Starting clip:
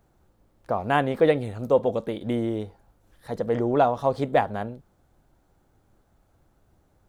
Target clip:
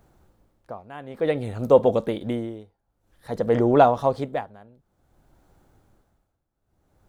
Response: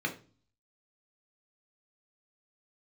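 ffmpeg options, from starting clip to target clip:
-af "tremolo=f=0.54:d=0.93,volume=1.78"

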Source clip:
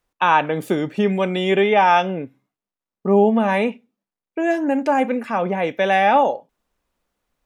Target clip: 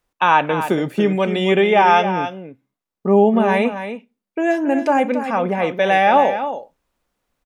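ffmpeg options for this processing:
-af "aecho=1:1:276:0.316,volume=1.19"

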